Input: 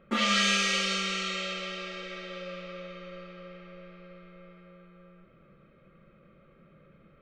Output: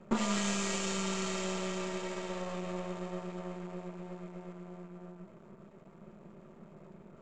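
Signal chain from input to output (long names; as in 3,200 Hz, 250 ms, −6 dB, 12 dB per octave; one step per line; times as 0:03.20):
high-shelf EQ 3,900 Hz −9.5 dB
downward compressor 3 to 1, threshold −35 dBFS, peak gain reduction 8.5 dB
half-wave rectification
low-pass with resonance 7,300 Hz, resonance Q 8.4
hollow resonant body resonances 210/380/630/890 Hz, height 13 dB, ringing for 30 ms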